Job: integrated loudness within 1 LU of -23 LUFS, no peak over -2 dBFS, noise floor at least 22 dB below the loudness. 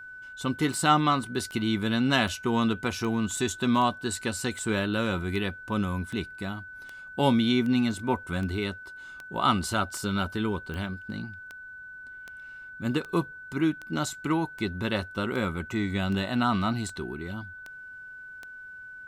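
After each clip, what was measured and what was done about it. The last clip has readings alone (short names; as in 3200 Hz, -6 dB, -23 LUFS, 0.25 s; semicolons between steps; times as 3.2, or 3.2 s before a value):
clicks 24; steady tone 1500 Hz; tone level -41 dBFS; loudness -28.0 LUFS; peak -9.5 dBFS; loudness target -23.0 LUFS
-> de-click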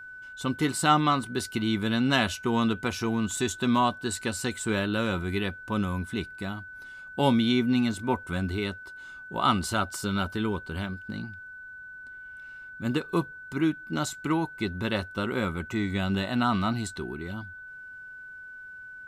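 clicks 0; steady tone 1500 Hz; tone level -41 dBFS
-> notch 1500 Hz, Q 30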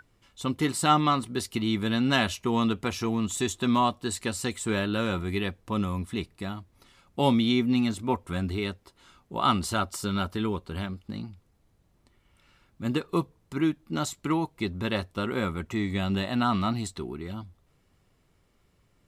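steady tone none; loudness -28.0 LUFS; peak -9.5 dBFS; loudness target -23.0 LUFS
-> gain +5 dB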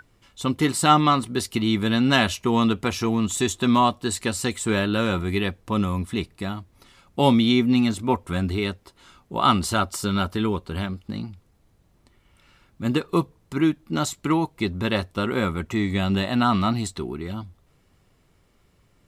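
loudness -23.0 LUFS; peak -4.5 dBFS; noise floor -62 dBFS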